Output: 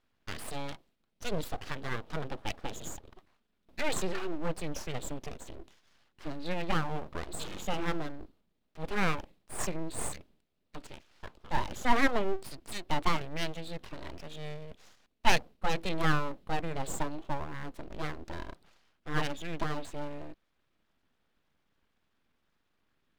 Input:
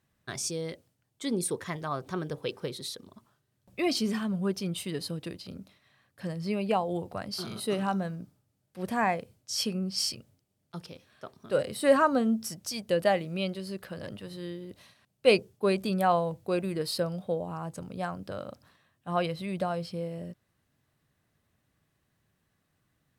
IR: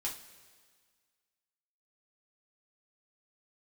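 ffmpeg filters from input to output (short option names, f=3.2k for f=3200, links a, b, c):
-af "asetrate=38170,aresample=44100,atempo=1.15535,highshelf=f=5k:t=q:w=1.5:g=-11,aeval=exprs='abs(val(0))':c=same"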